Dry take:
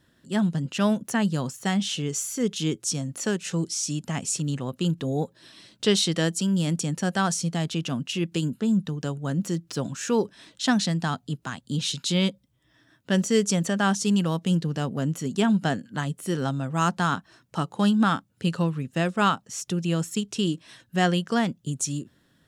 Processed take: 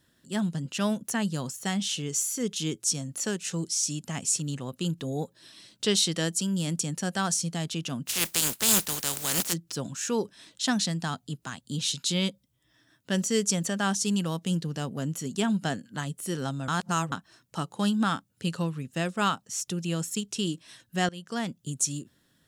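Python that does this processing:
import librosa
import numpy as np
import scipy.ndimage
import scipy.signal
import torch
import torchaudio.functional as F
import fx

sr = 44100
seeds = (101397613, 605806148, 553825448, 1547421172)

y = fx.spec_flatten(x, sr, power=0.3, at=(8.06, 9.52), fade=0.02)
y = fx.edit(y, sr, fx.reverse_span(start_s=16.68, length_s=0.44),
    fx.fade_in_from(start_s=21.09, length_s=0.64, curve='qsin', floor_db=-23.5), tone=tone)
y = fx.high_shelf(y, sr, hz=4200.0, db=9.0)
y = y * 10.0 ** (-5.0 / 20.0)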